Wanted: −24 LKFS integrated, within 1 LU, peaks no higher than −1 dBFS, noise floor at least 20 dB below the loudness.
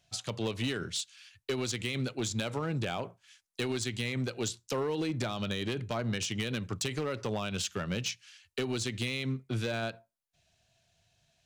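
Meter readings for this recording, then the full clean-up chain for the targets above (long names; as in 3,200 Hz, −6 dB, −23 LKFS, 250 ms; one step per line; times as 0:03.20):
share of clipped samples 1.4%; peaks flattened at −26.0 dBFS; integrated loudness −34.0 LKFS; sample peak −26.0 dBFS; target loudness −24.0 LKFS
→ clipped peaks rebuilt −26 dBFS
level +10 dB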